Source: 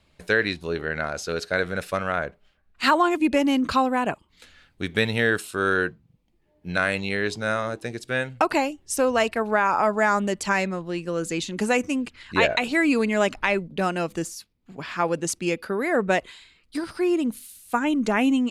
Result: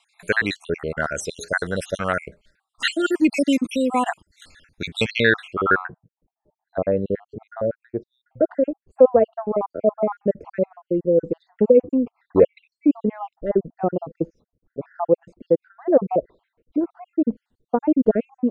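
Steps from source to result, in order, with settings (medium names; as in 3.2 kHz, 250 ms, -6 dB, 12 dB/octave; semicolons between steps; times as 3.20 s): random holes in the spectrogram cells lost 62%; low-pass sweep 9.5 kHz -> 520 Hz, 4.89–6.12 s; trim +4.5 dB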